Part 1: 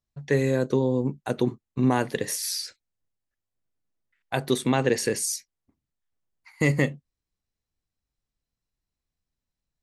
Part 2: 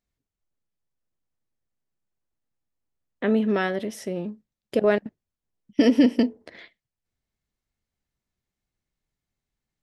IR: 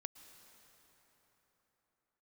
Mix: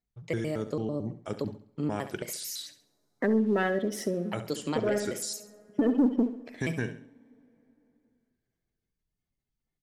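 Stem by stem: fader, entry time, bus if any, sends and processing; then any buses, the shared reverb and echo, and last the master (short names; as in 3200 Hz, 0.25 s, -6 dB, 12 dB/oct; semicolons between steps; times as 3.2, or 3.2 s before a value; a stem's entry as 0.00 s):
-8.0 dB, 0.00 s, send -21.5 dB, echo send -12.5 dB, shaped vibrato square 4.5 Hz, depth 250 cents
-0.5 dB, 0.00 s, send -15.5 dB, echo send -12.5 dB, spectral gate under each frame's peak -20 dB strong; sample leveller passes 1; auto duck -9 dB, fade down 0.25 s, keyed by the first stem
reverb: on, pre-delay 0.103 s
echo: feedback echo 68 ms, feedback 35%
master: compressor 2:1, threshold -27 dBFS, peak gain reduction 9 dB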